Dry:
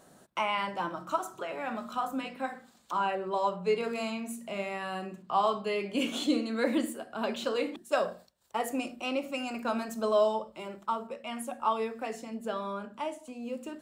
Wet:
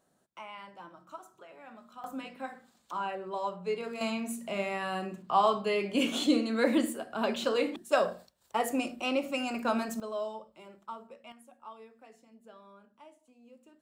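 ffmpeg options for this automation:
-af "asetnsamples=n=441:p=0,asendcmd='2.04 volume volume -5dB;4.01 volume volume 2dB;10 volume volume -10.5dB;11.32 volume volume -19dB',volume=0.178"

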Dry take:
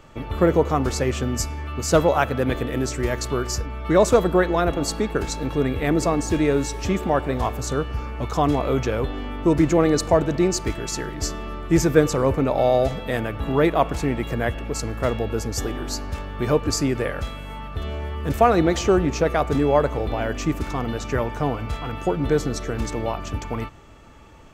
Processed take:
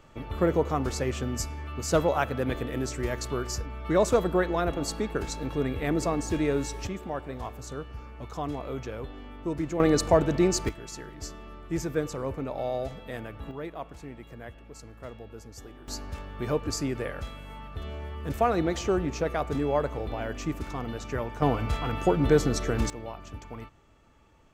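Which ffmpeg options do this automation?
-af "asetnsamples=n=441:p=0,asendcmd='6.87 volume volume -13dB;9.8 volume volume -3dB;10.69 volume volume -12.5dB;13.51 volume volume -19dB;15.88 volume volume -8dB;21.42 volume volume -0.5dB;22.9 volume volume -13dB',volume=0.473"

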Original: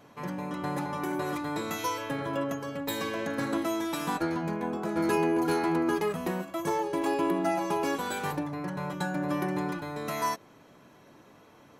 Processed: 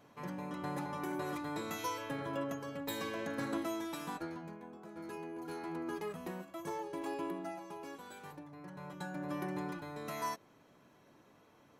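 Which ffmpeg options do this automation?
-af "volume=3.16,afade=t=out:st=3.55:d=1.11:silence=0.251189,afade=t=in:st=5.32:d=0.77:silence=0.421697,afade=t=out:st=7.22:d=0.41:silence=0.473151,afade=t=in:st=8.44:d=1.06:silence=0.334965"

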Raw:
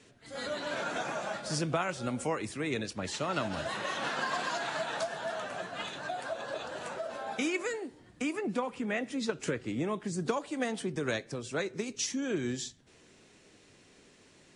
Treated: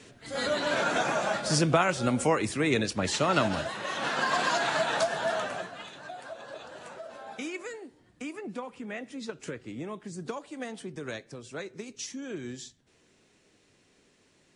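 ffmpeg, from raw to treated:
-af "volume=6.31,afade=t=out:st=3.46:d=0.27:silence=0.354813,afade=t=in:st=3.73:d=0.74:silence=0.375837,afade=t=out:st=5.36:d=0.43:silence=0.251189"

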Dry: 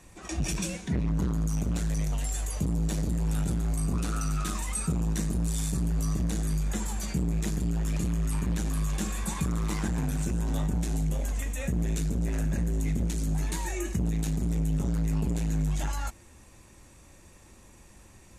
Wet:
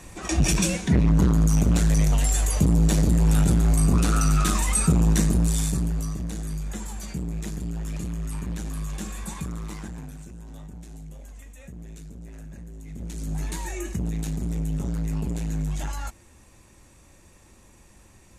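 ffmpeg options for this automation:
-af "volume=12.6,afade=t=out:st=5.17:d=0.97:silence=0.266073,afade=t=out:st=9.31:d=0.95:silence=0.298538,afade=t=in:st=12.87:d=0.55:silence=0.223872"

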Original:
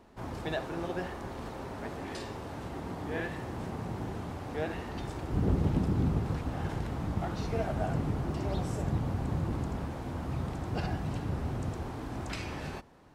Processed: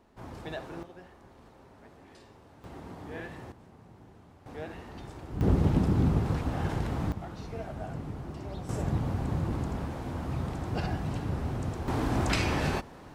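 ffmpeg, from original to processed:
-af "asetnsamples=n=441:p=0,asendcmd='0.83 volume volume -14.5dB;2.64 volume volume -5.5dB;3.52 volume volume -16.5dB;4.46 volume volume -6dB;5.41 volume volume 3.5dB;7.12 volume volume -6.5dB;8.69 volume volume 1.5dB;11.88 volume volume 10dB',volume=0.596"

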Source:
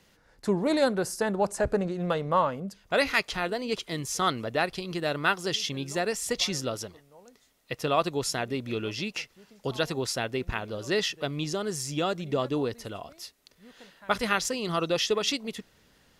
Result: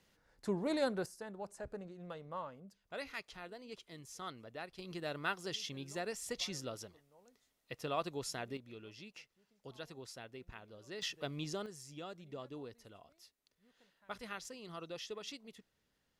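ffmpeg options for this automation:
-af "asetnsamples=n=441:p=0,asendcmd='1.06 volume volume -19.5dB;4.79 volume volume -12dB;8.57 volume volume -20dB;11.02 volume volume -10dB;11.66 volume volume -19dB',volume=0.316"

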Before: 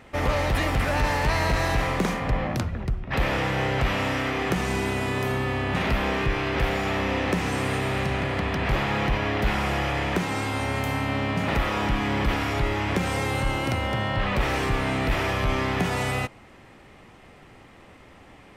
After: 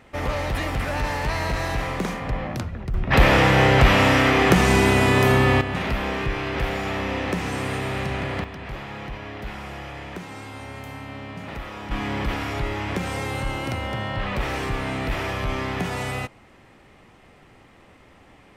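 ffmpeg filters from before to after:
-af "asetnsamples=n=441:p=0,asendcmd='2.94 volume volume 9dB;5.61 volume volume -1dB;8.44 volume volume -10dB;11.91 volume volume -2dB',volume=0.794"

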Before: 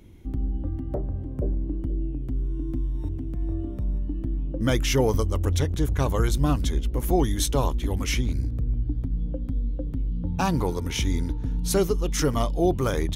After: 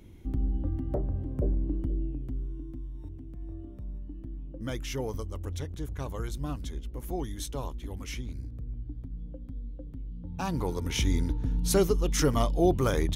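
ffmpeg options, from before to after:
-af "volume=2.82,afade=t=out:st=1.73:d=1:silence=0.298538,afade=t=in:st=10.27:d=0.78:silence=0.298538"

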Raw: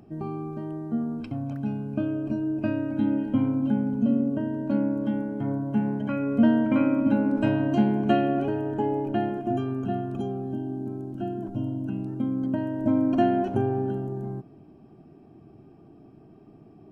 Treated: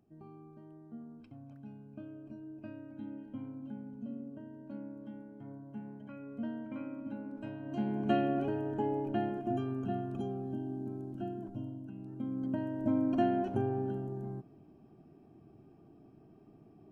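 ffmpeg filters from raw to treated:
-af "volume=1.19,afade=t=in:st=7.62:d=0.55:silence=0.237137,afade=t=out:st=11.13:d=0.8:silence=0.354813,afade=t=in:st=11.93:d=0.6:silence=0.375837"

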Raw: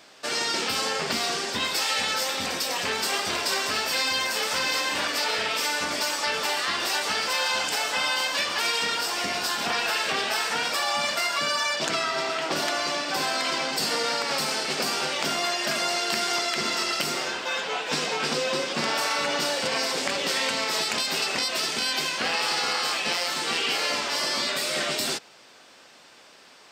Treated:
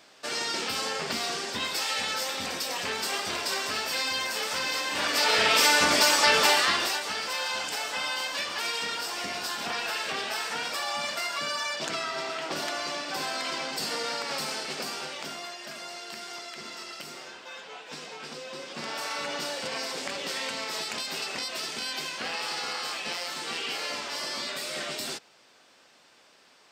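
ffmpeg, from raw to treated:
-af "volume=4.47,afade=t=in:st=4.9:d=0.68:silence=0.316228,afade=t=out:st=6.46:d=0.54:silence=0.266073,afade=t=out:st=14.47:d=1.1:silence=0.375837,afade=t=in:st=18.49:d=0.67:silence=0.446684"

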